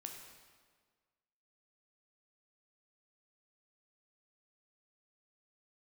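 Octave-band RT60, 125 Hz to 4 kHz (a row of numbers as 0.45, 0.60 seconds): 1.6, 1.7, 1.7, 1.6, 1.4, 1.3 seconds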